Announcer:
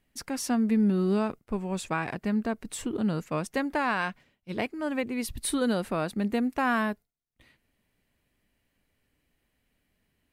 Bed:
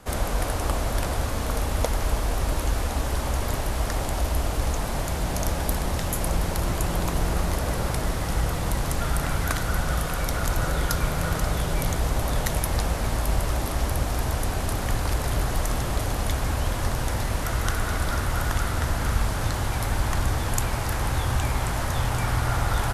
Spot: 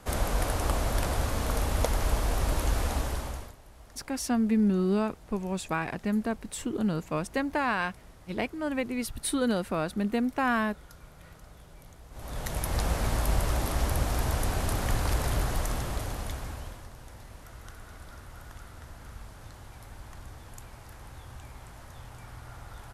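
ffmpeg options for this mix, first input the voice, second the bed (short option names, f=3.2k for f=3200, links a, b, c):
-filter_complex "[0:a]adelay=3800,volume=-0.5dB[a];[1:a]volume=21dB,afade=t=out:st=2.91:d=0.63:silence=0.0668344,afade=t=in:st=12.1:d=0.82:silence=0.0668344,afade=t=out:st=15.21:d=1.66:silence=0.11885[b];[a][b]amix=inputs=2:normalize=0"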